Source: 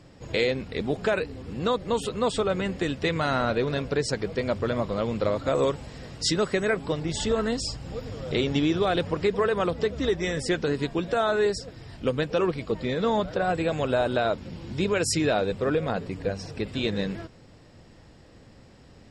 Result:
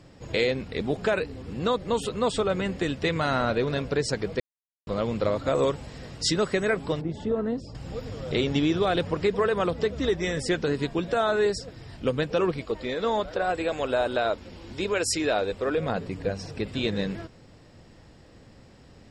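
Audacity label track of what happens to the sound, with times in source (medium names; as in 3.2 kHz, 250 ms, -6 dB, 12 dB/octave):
4.400000	4.870000	mute
7.010000	7.750000	band-pass filter 260 Hz, Q 0.53
12.610000	15.780000	peaking EQ 150 Hz -13.5 dB 1 oct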